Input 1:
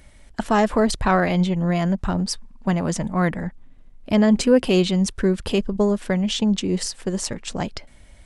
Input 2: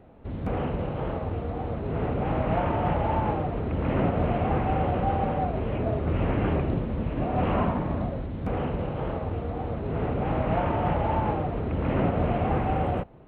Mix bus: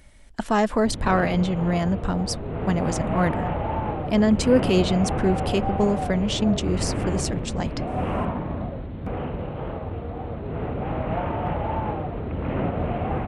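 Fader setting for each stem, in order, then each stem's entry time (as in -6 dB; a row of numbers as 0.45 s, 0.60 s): -2.5 dB, -1.0 dB; 0.00 s, 0.60 s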